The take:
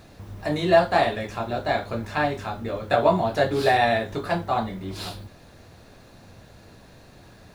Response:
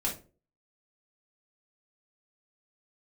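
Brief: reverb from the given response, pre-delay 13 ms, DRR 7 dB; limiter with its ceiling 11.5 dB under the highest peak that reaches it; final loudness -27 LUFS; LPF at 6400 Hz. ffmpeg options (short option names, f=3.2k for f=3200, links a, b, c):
-filter_complex "[0:a]lowpass=6.4k,alimiter=limit=-16dB:level=0:latency=1,asplit=2[a][b];[1:a]atrim=start_sample=2205,adelay=13[c];[b][c]afir=irnorm=-1:irlink=0,volume=-12dB[d];[a][d]amix=inputs=2:normalize=0,volume=-0.5dB"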